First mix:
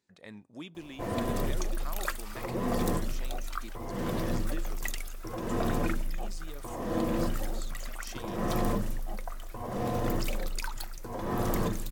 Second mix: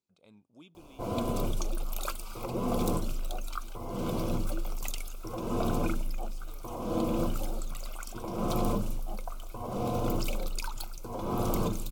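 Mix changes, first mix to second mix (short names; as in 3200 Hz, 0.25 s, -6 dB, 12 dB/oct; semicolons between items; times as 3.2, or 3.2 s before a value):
speech -10.5 dB; master: add Butterworth band-stop 1800 Hz, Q 2.4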